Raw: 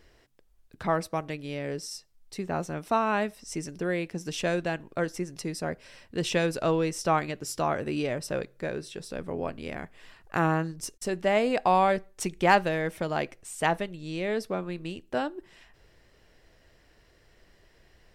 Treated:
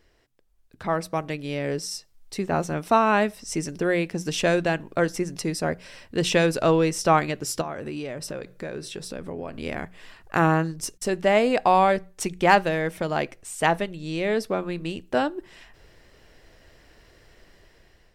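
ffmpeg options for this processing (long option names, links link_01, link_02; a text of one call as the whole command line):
ffmpeg -i in.wav -filter_complex "[0:a]asettb=1/sr,asplit=3[link_01][link_02][link_03];[link_01]atrim=end=7.614[link_04];[link_02]atrim=start=7.61:end=9.54,asetpts=PTS-STARTPTS,afade=type=in:duration=0.004:curve=qsin,afade=type=out:start_time=1.926:duration=0.004:curve=qsin,acompressor=threshold=-36dB:ratio=4:attack=3.2:release=140:knee=1:detection=peak[link_05];[link_03]atrim=start=9.536[link_06];[link_04][link_05]acrossfade=duration=0.004:curve1=hsin:curve2=qsin[link_07];[link_07][link_06]acrossfade=duration=0.004:curve1=qsin:curve2=hsin,dynaudnorm=framelen=420:gausssize=5:maxgain=10.5dB,bandreject=frequency=60:width_type=h:width=6,bandreject=frequency=120:width_type=h:width=6,bandreject=frequency=180:width_type=h:width=6,volume=-3.5dB" out.wav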